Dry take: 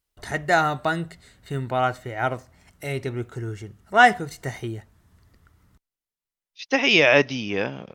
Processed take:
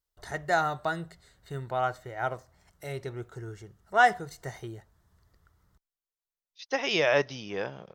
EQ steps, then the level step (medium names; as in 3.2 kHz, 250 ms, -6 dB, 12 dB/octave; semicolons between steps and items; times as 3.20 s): fifteen-band graphic EQ 100 Hz -5 dB, 250 Hz -10 dB, 2.5 kHz -8 dB, 10 kHz -4 dB; -5.0 dB